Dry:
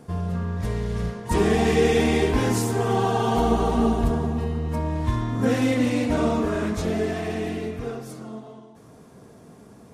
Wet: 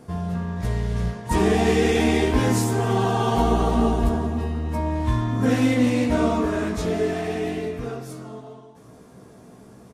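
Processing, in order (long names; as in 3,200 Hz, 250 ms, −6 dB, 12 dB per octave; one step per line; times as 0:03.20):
double-tracking delay 16 ms −5.5 dB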